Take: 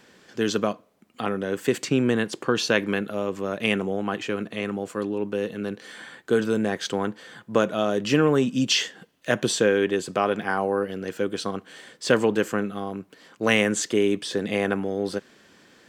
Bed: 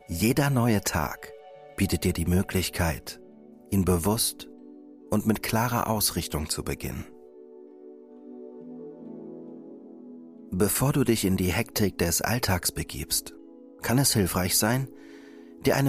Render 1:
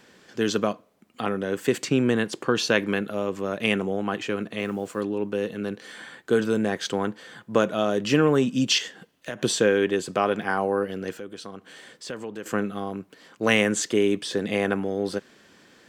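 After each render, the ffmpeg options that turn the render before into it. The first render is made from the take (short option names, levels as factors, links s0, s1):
-filter_complex "[0:a]asettb=1/sr,asplit=3[s0][s1][s2];[s0]atrim=end=4.594[s3];[s1]atrim=start=4.59:end=5.01,asetpts=PTS-STARTPTS,afade=t=in:d=0.004:c=qsin,afade=t=out:st=0.416:d=0.004:c=qsin,acrusher=bits=8:mix=0:aa=0.5[s4];[s2]atrim=start=5.006[s5];[s3][s4]acrossfade=d=0.004:c1=hsin:c2=qsin[s6];[s6][s5]acrossfade=d=0.004:c1=qsin:c2=hsin,asettb=1/sr,asplit=3[s7][s8][s9];[s7]atrim=end=8.784[s10];[s8]atrim=start=8.78:end=9.43,asetpts=PTS-STARTPTS,afade=t=in:d=0.004:c=qsin,afade=t=out:st=0.646:d=0.004:c=qsin,acompressor=threshold=0.0398:ratio=6:attack=3.2:release=140:knee=1:detection=peak[s11];[s9]atrim=start=9.426[s12];[s10][s11]acrossfade=d=0.004:c1=hsin:c2=qsin[s13];[s13][s12]acrossfade=d=0.004:c1=qsin:c2=hsin,asettb=1/sr,asplit=3[s14][s15][s16];[s14]atrim=end=11.144[s17];[s15]atrim=start=11.14:end=12.46,asetpts=PTS-STARTPTS,afade=t=in:d=0.004:c=qsin,afade=t=out:st=1.316:d=0.004:c=qsin,acompressor=threshold=0.00794:ratio=2:attack=3.2:release=140:knee=1:detection=peak[s18];[s16]atrim=start=12.456[s19];[s17][s18]acrossfade=d=0.004:c1=hsin:c2=qsin[s20];[s20][s19]acrossfade=d=0.004:c1=qsin:c2=hsin"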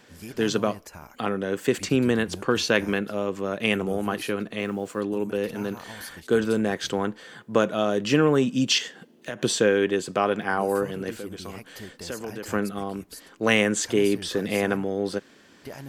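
-filter_complex "[1:a]volume=0.141[s0];[0:a][s0]amix=inputs=2:normalize=0"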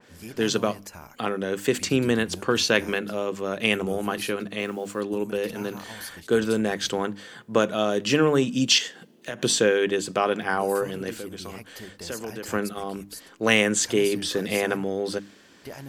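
-af "bandreject=f=50:t=h:w=6,bandreject=f=100:t=h:w=6,bandreject=f=150:t=h:w=6,bandreject=f=200:t=h:w=6,bandreject=f=250:t=h:w=6,bandreject=f=300:t=h:w=6,adynamicequalizer=threshold=0.01:dfrequency=2500:dqfactor=0.7:tfrequency=2500:tqfactor=0.7:attack=5:release=100:ratio=0.375:range=2:mode=boostabove:tftype=highshelf"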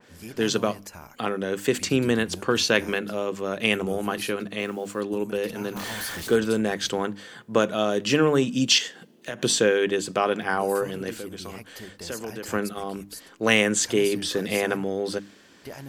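-filter_complex "[0:a]asettb=1/sr,asplit=3[s0][s1][s2];[s0]atrim=end=5.764[s3];[s1]atrim=start=5.76:end=6.36,asetpts=PTS-STARTPTS,afade=t=in:d=0.004:c=qsin,afade=t=out:st=0.596:d=0.004:c=qsin,aeval=exprs='val(0)+0.5*0.0282*sgn(val(0))':c=same[s4];[s2]atrim=start=6.356[s5];[s3][s4]acrossfade=d=0.004:c1=hsin:c2=qsin[s6];[s6][s5]acrossfade=d=0.004:c1=qsin:c2=hsin"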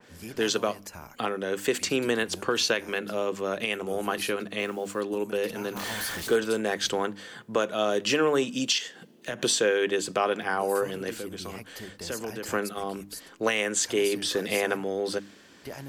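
-filter_complex "[0:a]acrossover=split=310[s0][s1];[s0]acompressor=threshold=0.0112:ratio=4[s2];[s2][s1]amix=inputs=2:normalize=0,alimiter=limit=0.224:level=0:latency=1:release=350"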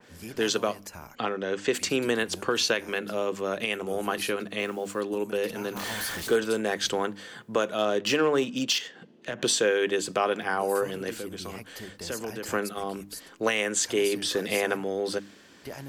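-filter_complex "[0:a]asettb=1/sr,asplit=3[s0][s1][s2];[s0]atrim=end=1.154[s3];[s1]atrim=start=1.15:end=1.73,asetpts=PTS-STARTPTS,afade=t=in:d=0.004:c=qsin,afade=t=out:st=0.576:d=0.004:c=qsin,lowpass=f=6500:w=0.5412,lowpass=f=6500:w=1.3066[s4];[s2]atrim=start=1.726[s5];[s3][s4]acrossfade=d=0.004:c1=hsin:c2=qsin[s6];[s6][s5]acrossfade=d=0.004:c1=qsin:c2=hsin,asettb=1/sr,asplit=3[s7][s8][s9];[s7]atrim=end=7.784[s10];[s8]atrim=start=7.78:end=9.48,asetpts=PTS-STARTPTS,afade=t=in:d=0.004:c=qsin,afade=t=out:st=1.696:d=0.004:c=qsin,adynamicsmooth=sensitivity=5.5:basefreq=4500[s11];[s9]atrim=start=9.476[s12];[s10][s11]acrossfade=d=0.004:c1=hsin:c2=qsin[s13];[s13][s12]acrossfade=d=0.004:c1=qsin:c2=hsin"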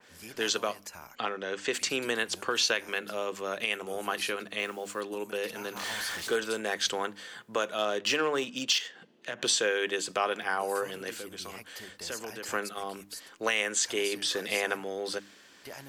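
-filter_complex "[0:a]lowshelf=f=490:g=-11,acrossover=split=9100[s0][s1];[s1]acompressor=threshold=0.00447:ratio=4:attack=1:release=60[s2];[s0][s2]amix=inputs=2:normalize=0"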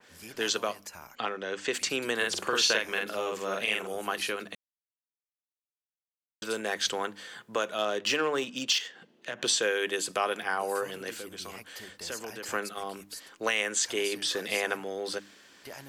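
-filter_complex "[0:a]asettb=1/sr,asplit=3[s0][s1][s2];[s0]atrim=end=2.164[s3];[s1]atrim=start=2.16:end=3.87,asetpts=PTS-STARTPTS,afade=t=in:d=0.004:c=qsin,afade=t=out:st=1.706:d=0.004:c=qsin,asplit=2[s4][s5];[s5]adelay=47,volume=0.794[s6];[s4][s6]amix=inputs=2:normalize=0,atrim=end_sample=75411[s7];[s2]atrim=start=3.866[s8];[s3][s7]acrossfade=d=0.004:c1=hsin:c2=qsin[s9];[s9][s8]acrossfade=d=0.004:c1=qsin:c2=hsin,asettb=1/sr,asplit=3[s10][s11][s12];[s10]atrim=end=9.624[s13];[s11]atrim=start=9.62:end=10.43,asetpts=PTS-STARTPTS,afade=t=in:d=0.004:c=qsin,afade=t=out:st=0.806:d=0.004:c=qsin,equalizer=f=11000:w=1.6:g=9.5[s14];[s12]atrim=start=10.426[s15];[s13][s14]acrossfade=d=0.004:c1=hsin:c2=qsin[s16];[s16][s15]acrossfade=d=0.004:c1=qsin:c2=hsin,asplit=3[s17][s18][s19];[s17]atrim=end=4.55,asetpts=PTS-STARTPTS,afade=t=out:st=4.546:d=0.004:c=hsin[s20];[s18]atrim=start=4.55:end=6.42,asetpts=PTS-STARTPTS,volume=0[s21];[s19]atrim=start=6.42,asetpts=PTS-STARTPTS,afade=t=in:d=0.004:c=hsin[s22];[s20][s21][s22]concat=n=3:v=0:a=1"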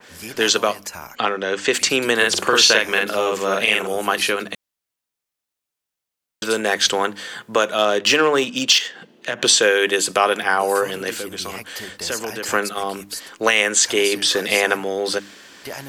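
-af "volume=3.98,alimiter=limit=0.794:level=0:latency=1"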